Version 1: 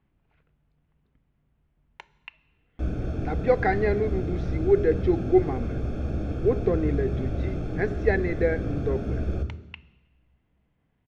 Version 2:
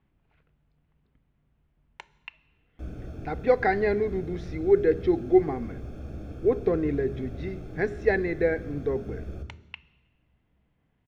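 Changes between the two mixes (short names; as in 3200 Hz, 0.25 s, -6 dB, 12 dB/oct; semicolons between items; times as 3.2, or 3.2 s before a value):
background -9.5 dB; master: remove air absorption 55 m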